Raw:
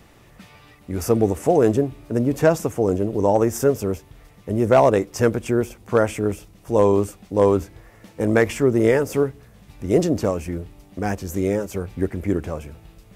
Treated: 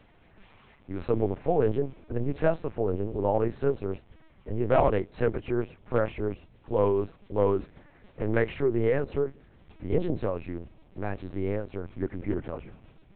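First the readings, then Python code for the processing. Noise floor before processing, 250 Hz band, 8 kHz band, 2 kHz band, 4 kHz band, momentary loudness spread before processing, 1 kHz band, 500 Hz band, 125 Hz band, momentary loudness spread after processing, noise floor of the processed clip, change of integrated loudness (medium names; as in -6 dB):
-50 dBFS, -10.0 dB, under -40 dB, -8.5 dB, under -10 dB, 11 LU, -8.0 dB, -8.0 dB, -7.0 dB, 12 LU, -58 dBFS, -8.0 dB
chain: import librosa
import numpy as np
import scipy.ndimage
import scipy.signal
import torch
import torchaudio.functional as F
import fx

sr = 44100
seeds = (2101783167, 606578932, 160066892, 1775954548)

y = fx.freq_compress(x, sr, knee_hz=2800.0, ratio=1.5)
y = fx.lpc_vocoder(y, sr, seeds[0], excitation='pitch_kept', order=8)
y = F.gain(torch.from_numpy(y), -7.5).numpy()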